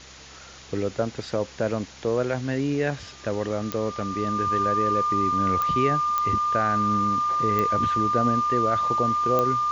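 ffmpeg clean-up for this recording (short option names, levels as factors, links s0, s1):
-af "adeclick=t=4,bandreject=f=66:t=h:w=4,bandreject=f=132:t=h:w=4,bandreject=f=198:t=h:w=4,bandreject=f=264:t=h:w=4,bandreject=f=1200:w=30,afwtdn=0.0079"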